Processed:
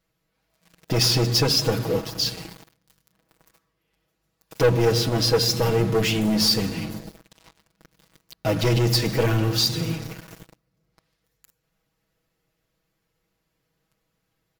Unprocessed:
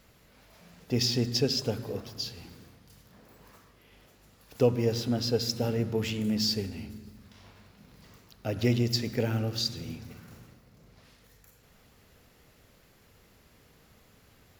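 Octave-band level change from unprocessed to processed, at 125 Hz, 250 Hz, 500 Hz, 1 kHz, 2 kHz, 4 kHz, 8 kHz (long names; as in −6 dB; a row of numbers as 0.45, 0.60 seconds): +8.0, +5.0, +7.5, +12.5, +11.0, +9.0, +10.0 decibels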